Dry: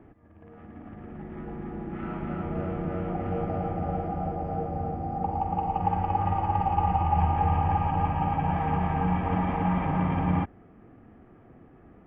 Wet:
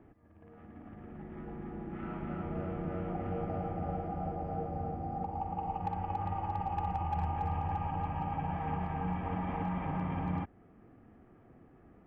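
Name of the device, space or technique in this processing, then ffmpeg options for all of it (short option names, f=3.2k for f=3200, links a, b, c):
clipper into limiter: -af "asoftclip=type=hard:threshold=-15.5dB,alimiter=limit=-19.5dB:level=0:latency=1:release=297,volume=-6dB"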